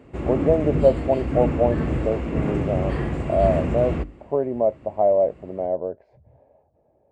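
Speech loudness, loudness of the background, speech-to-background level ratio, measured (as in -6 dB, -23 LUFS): -23.5 LUFS, -26.0 LUFS, 2.5 dB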